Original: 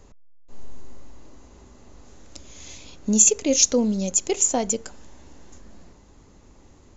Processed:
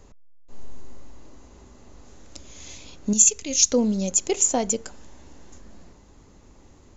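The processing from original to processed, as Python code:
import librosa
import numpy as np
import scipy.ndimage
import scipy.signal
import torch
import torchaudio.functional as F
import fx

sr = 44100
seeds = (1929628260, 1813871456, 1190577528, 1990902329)

y = fx.peak_eq(x, sr, hz=520.0, db=-13.0, octaves=2.8, at=(3.13, 3.72))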